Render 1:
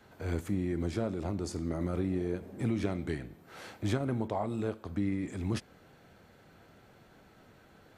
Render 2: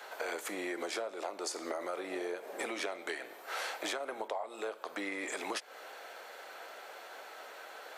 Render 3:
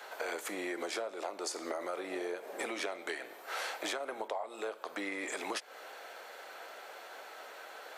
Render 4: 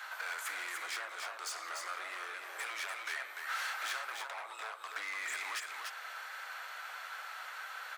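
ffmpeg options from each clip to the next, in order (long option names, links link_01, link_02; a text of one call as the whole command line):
ffmpeg -i in.wav -af "highpass=frequency=520:width=0.5412,highpass=frequency=520:width=1.3066,acompressor=threshold=-48dB:ratio=16,volume=14dB" out.wav
ffmpeg -i in.wav -af anull out.wav
ffmpeg -i in.wav -af "asoftclip=type=hard:threshold=-38dB,highpass=frequency=1300:width_type=q:width=1.8,aecho=1:1:295:0.596,volume=1dB" out.wav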